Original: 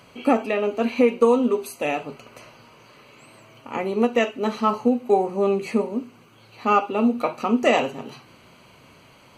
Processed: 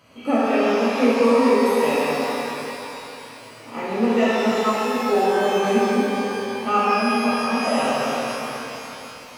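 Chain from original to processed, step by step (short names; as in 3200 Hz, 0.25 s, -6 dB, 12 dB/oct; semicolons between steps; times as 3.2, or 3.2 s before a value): 4.49–4.97 HPF 590 Hz 6 dB/oct; 6.77–7.78 fixed phaser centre 940 Hz, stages 4; shimmer reverb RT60 3.3 s, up +12 st, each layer -8 dB, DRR -9.5 dB; gain -7.5 dB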